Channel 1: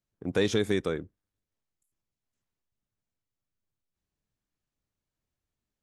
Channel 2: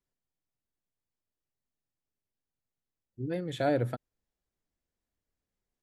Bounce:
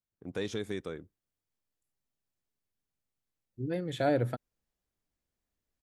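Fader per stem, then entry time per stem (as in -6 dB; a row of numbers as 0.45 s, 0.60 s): -9.5 dB, 0.0 dB; 0.00 s, 0.40 s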